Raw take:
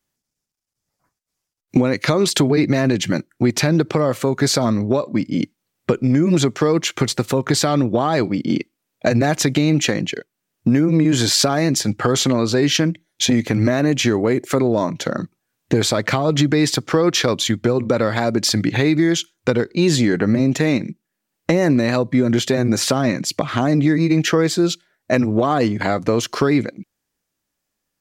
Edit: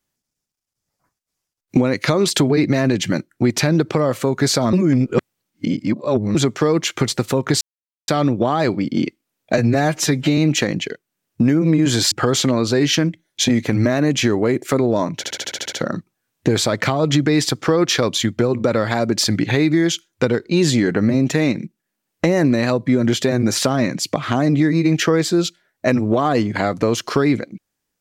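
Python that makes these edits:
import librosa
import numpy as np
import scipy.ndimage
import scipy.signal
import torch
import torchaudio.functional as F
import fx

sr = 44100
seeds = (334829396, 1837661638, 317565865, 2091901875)

y = fx.edit(x, sr, fx.reverse_span(start_s=4.73, length_s=1.62),
    fx.insert_silence(at_s=7.61, length_s=0.47),
    fx.stretch_span(start_s=9.11, length_s=0.53, factor=1.5),
    fx.cut(start_s=11.38, length_s=0.55),
    fx.stutter(start_s=14.98, slice_s=0.07, count=9), tone=tone)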